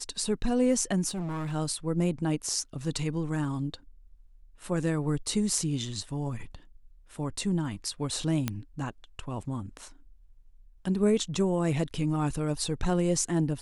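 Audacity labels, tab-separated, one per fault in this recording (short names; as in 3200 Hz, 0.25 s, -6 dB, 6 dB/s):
1.090000	1.530000	clipped -30 dBFS
8.480000	8.480000	pop -13 dBFS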